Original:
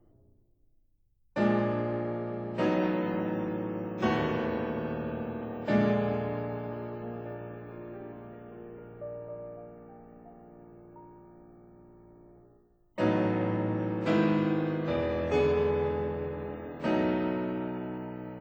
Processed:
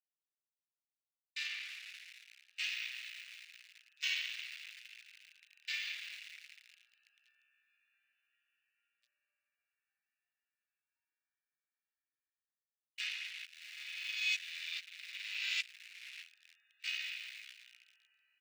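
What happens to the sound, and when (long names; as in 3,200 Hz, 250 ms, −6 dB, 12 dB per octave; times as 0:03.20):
0:13.45–0:16.23: reverse
whole clip: adaptive Wiener filter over 41 samples; Butterworth high-pass 2,400 Hz 36 dB per octave; notch filter 3,200 Hz, Q 20; level +12 dB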